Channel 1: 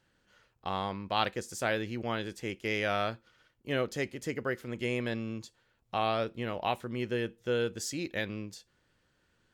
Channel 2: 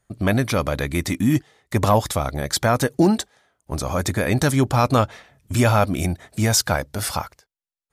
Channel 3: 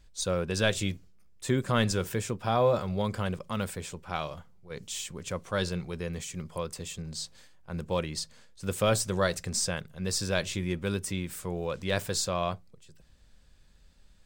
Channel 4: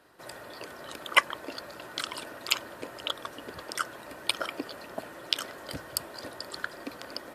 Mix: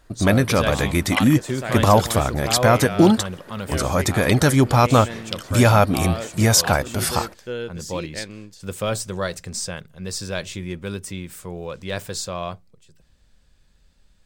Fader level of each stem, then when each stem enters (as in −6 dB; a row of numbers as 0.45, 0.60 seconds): +0.5, +2.5, +1.0, −2.5 decibels; 0.00, 0.00, 0.00, 0.00 seconds